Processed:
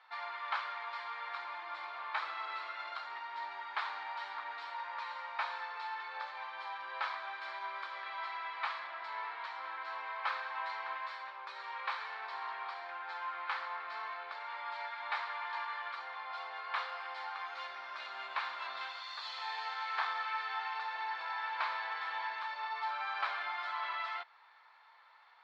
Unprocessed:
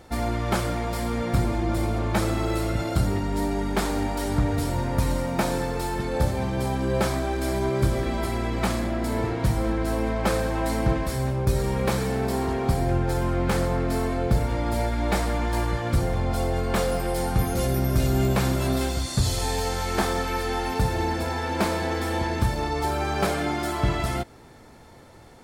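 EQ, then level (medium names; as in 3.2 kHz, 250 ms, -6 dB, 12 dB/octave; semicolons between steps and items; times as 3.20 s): elliptic band-pass 990–4200 Hz, stop band 80 dB; treble shelf 2.9 kHz -11 dB; -2.0 dB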